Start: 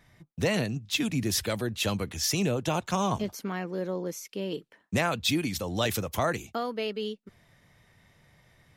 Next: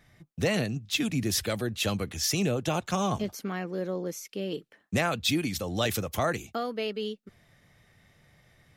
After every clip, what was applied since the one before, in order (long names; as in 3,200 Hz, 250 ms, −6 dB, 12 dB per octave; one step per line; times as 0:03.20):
notch filter 960 Hz, Q 8.9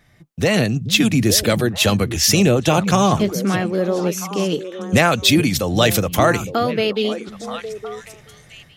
echo through a band-pass that steps 431 ms, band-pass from 150 Hz, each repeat 1.4 octaves, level −6 dB
automatic gain control gain up to 8 dB
level +4.5 dB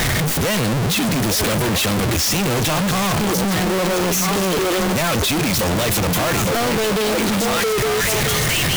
sign of each sample alone